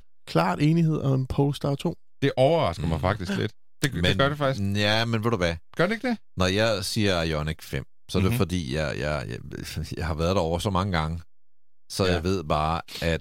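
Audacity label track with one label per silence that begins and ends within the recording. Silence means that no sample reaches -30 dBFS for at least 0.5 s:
11.190000	11.910000	silence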